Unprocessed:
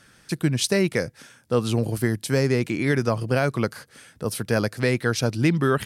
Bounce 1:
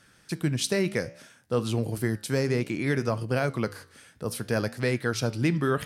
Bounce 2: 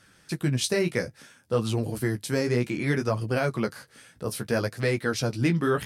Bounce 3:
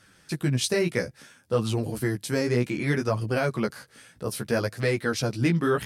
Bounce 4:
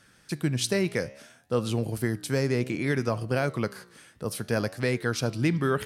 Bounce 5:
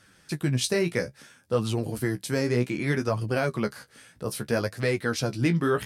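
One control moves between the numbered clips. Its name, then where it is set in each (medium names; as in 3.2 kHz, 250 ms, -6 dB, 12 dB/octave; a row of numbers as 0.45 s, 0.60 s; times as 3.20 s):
flange, regen: -83%, -22%, -1%, +89%, +28%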